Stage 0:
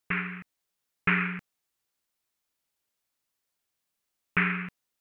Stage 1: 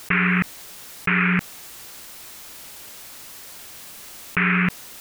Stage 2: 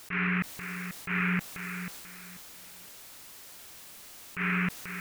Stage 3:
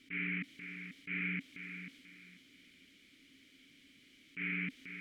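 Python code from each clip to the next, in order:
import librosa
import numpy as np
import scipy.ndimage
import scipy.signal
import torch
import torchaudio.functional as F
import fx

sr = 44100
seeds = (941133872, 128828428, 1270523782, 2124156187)

y1 = fx.env_flatten(x, sr, amount_pct=100)
y1 = F.gain(torch.from_numpy(y1), 2.0).numpy()
y2 = fx.echo_feedback(y1, sr, ms=488, feedback_pct=25, wet_db=-9.5)
y2 = fx.transient(y2, sr, attack_db=-9, sustain_db=4)
y2 = F.gain(torch.from_numpy(y2), -8.5).numpy()
y3 = fx.dmg_noise_colour(y2, sr, seeds[0], colour='brown', level_db=-54.0)
y3 = fx.vowel_filter(y3, sr, vowel='i')
y3 = F.gain(torch.from_numpy(y3), 4.0).numpy()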